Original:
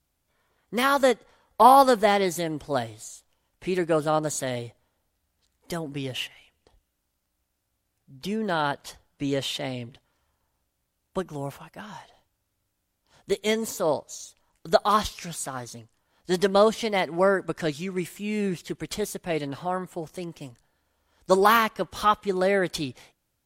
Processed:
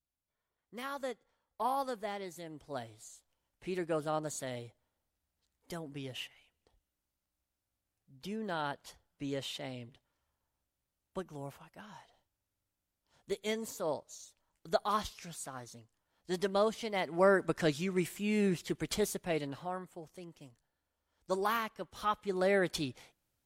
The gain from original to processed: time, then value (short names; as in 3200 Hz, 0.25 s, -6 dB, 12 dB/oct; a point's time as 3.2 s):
2.32 s -19 dB
3.1 s -11 dB
16.9 s -11 dB
17.39 s -3 dB
19.06 s -3 dB
19.98 s -14 dB
21.91 s -14 dB
22.54 s -6 dB